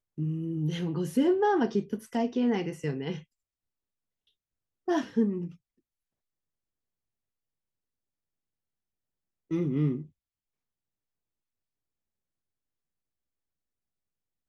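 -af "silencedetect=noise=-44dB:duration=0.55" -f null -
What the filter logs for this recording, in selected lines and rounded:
silence_start: 3.21
silence_end: 4.88 | silence_duration: 1.67
silence_start: 5.51
silence_end: 9.51 | silence_duration: 4.00
silence_start: 10.06
silence_end: 14.48 | silence_duration: 4.43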